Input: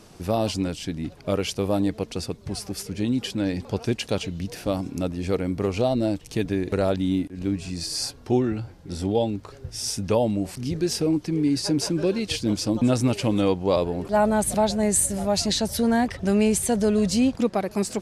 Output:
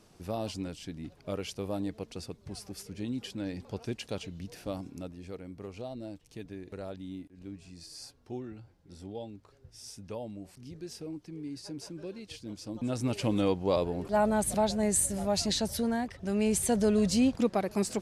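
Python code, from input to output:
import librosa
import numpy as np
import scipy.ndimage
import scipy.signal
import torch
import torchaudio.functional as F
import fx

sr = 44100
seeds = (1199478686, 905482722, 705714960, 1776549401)

y = fx.gain(x, sr, db=fx.line((4.78, -11.0), (5.33, -18.0), (12.58, -18.0), (13.23, -6.0), (15.7, -6.0), (16.15, -13.0), (16.61, -4.5)))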